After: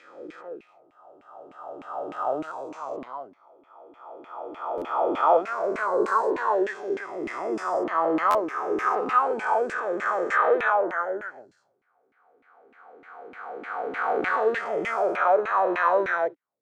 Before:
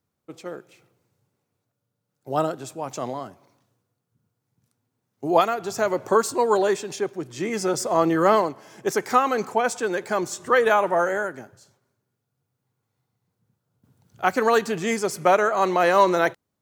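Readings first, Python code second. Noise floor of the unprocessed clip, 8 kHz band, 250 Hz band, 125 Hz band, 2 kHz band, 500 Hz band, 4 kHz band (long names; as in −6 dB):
−80 dBFS, below −15 dB, −5.5 dB, below −15 dB, −1.0 dB, −3.0 dB, −11.5 dB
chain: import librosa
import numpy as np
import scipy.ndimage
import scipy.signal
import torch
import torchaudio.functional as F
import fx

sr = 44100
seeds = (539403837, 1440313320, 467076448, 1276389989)

y = fx.spec_swells(x, sr, rise_s=2.92)
y = fx.filter_lfo_bandpass(y, sr, shape='saw_down', hz=3.3, low_hz=260.0, high_hz=2400.0, q=4.0)
y = fx.buffer_glitch(y, sr, at_s=(4.77, 8.3), block=512, repeats=3)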